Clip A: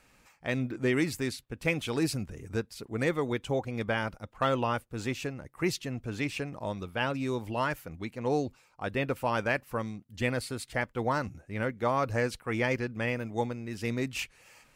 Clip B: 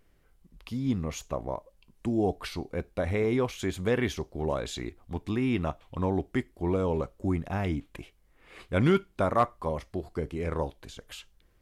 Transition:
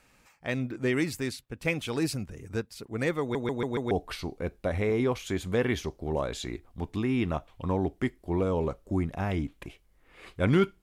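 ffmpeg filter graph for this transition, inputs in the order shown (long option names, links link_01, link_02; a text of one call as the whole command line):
ffmpeg -i cue0.wav -i cue1.wav -filter_complex "[0:a]apad=whole_dur=10.82,atrim=end=10.82,asplit=5[link_01][link_02][link_03][link_04][link_05];[link_01]atrim=end=3.352[link_06];[link_02]atrim=start=3.208:end=3.352[link_07];[link_03]atrim=start=3.208:end=3.352[link_08];[link_04]atrim=start=3.208:end=3.352[link_09];[link_05]atrim=start=3.208:end=3.352[link_10];[1:a]atrim=start=2.238:end=9.15[link_11];[link_06][link_07]acrossfade=duration=0.004:curve1=hsin:curve2=hsin[link_12];[link_12][link_08]acrossfade=duration=0.004:curve1=hsin:curve2=hsin[link_13];[link_13][link_09]acrossfade=duration=0.004:curve1=hsin:curve2=hsin[link_14];[link_14][link_10]acrossfade=duration=0.004:curve1=hsin:curve2=hsin[link_15];[link_15][link_11]acrossfade=duration=0.004:curve1=hsin:curve2=hsin" out.wav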